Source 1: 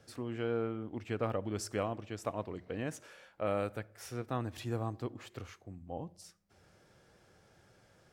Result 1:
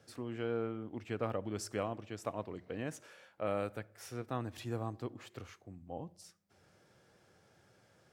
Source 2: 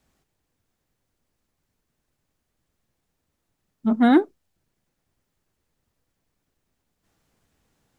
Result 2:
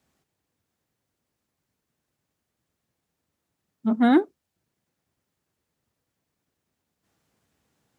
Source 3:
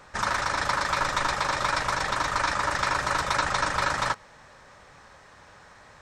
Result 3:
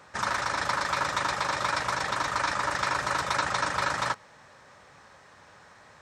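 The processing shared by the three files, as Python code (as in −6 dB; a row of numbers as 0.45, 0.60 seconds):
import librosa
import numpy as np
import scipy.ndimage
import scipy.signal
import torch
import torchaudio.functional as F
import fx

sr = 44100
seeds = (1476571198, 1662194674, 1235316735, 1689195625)

y = scipy.signal.sosfilt(scipy.signal.butter(2, 83.0, 'highpass', fs=sr, output='sos'), x)
y = F.gain(torch.from_numpy(y), -2.0).numpy()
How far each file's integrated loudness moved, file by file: −2.0, −2.0, −2.0 LU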